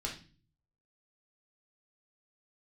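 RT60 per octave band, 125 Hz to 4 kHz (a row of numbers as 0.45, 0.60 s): 0.85, 0.60, 0.40, 0.35, 0.40, 0.40 s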